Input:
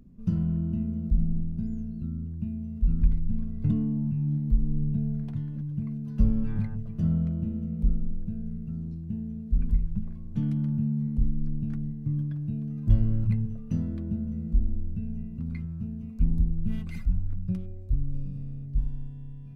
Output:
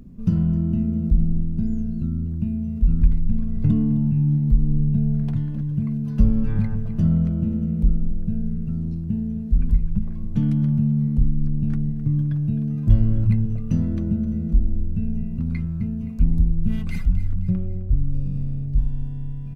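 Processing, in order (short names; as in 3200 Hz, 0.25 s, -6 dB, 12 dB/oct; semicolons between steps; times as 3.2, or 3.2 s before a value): 17.5–17.95 LPF 1900 Hz -> 1700 Hz 12 dB/oct; in parallel at -0.5 dB: compressor, threshold -31 dBFS, peak gain reduction 16 dB; on the sum: feedback echo 0.26 s, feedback 40%, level -15 dB; gain +4 dB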